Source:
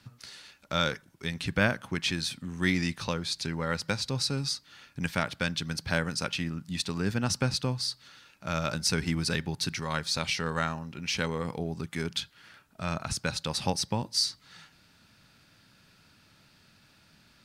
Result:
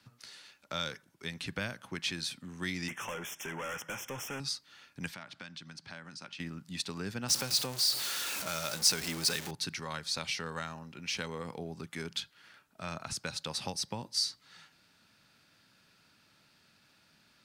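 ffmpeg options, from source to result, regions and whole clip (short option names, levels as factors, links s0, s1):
-filter_complex "[0:a]asettb=1/sr,asplit=3[s0][s1][s2];[s0]atrim=end=2.884[s3];[s1]atrim=start=2.88:end=4.4,asetpts=PTS-STARTPTS,afade=t=in:d=0.004:c=qsin,afade=t=out:st=1.516:d=0.004:c=qsin,asplit=2[s4][s5];[s5]highpass=f=720:p=1,volume=8.91,asoftclip=type=tanh:threshold=0.2[s6];[s4][s6]amix=inputs=2:normalize=0,lowpass=f=3200:p=1,volume=0.501,asoftclip=type=hard:threshold=0.0299,asuperstop=centerf=4300:order=12:qfactor=2.1[s7];[s2]atrim=start=4.396[s8];[s3][s7]acrossfade=d=0.004:c1=hsin:c2=qsin[s9];[s9][s8]acrossfade=d=0.004:c1=qsin:c2=hsin,asettb=1/sr,asplit=3[s10][s11][s12];[s10]atrim=end=5.144[s13];[s11]atrim=start=5.14:end=6.4,asetpts=PTS-STARTPTS,afade=t=in:d=0.004:c=qsin,afade=t=out:st=1.256:d=0.004:c=qsin,equalizer=f=460:t=o:w=0.39:g=-12,acompressor=threshold=0.0126:ratio=4:attack=3.2:release=140:knee=1:detection=peak,highpass=110,lowpass=7200[s14];[s12]atrim=start=6.396[s15];[s13][s14]acrossfade=d=0.004:c1=hsin:c2=qsin[s16];[s16][s15]acrossfade=d=0.004:c1=qsin:c2=hsin,asettb=1/sr,asplit=3[s17][s18][s19];[s17]atrim=end=7.284[s20];[s18]atrim=start=7.28:end=9.51,asetpts=PTS-STARTPTS,afade=t=in:d=0.004:c=qsin,afade=t=out:st=2.226:d=0.004:c=qsin,aeval=exprs='val(0)+0.5*0.0355*sgn(val(0))':c=same,bass=f=250:g=-7,treble=f=4000:g=6[s21];[s19]atrim=start=9.506[s22];[s20][s21]acrossfade=d=0.004:c1=hsin:c2=qsin[s23];[s23][s22]acrossfade=d=0.004:c1=qsin:c2=hsin,lowshelf=f=130:g=-11.5,acrossover=split=150|3000[s24][s25][s26];[s25]acompressor=threshold=0.0282:ratio=6[s27];[s24][s27][s26]amix=inputs=3:normalize=0,volume=0.631"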